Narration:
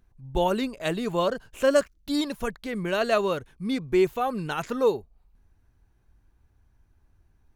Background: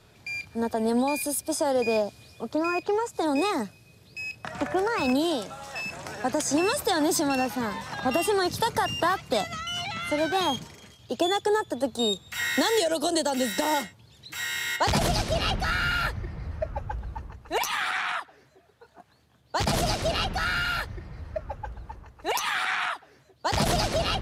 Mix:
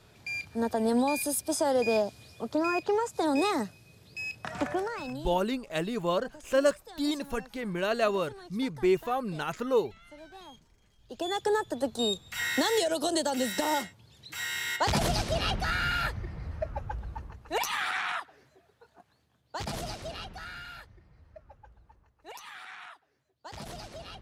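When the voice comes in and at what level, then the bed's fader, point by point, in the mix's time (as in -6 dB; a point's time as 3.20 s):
4.90 s, -3.5 dB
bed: 4.64 s -1.5 dB
5.47 s -23.5 dB
10.76 s -23.5 dB
11.43 s -3 dB
18.52 s -3 dB
20.93 s -18 dB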